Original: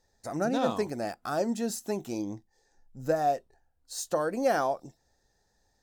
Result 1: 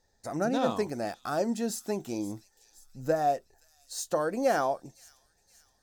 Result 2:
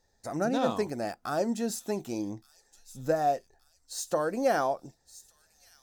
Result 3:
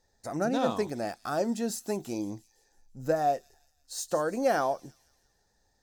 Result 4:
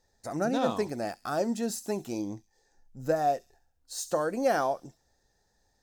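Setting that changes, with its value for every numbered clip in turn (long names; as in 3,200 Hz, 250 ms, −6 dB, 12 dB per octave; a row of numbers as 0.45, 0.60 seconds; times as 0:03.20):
delay with a high-pass on its return, delay time: 523, 1,171, 170, 68 milliseconds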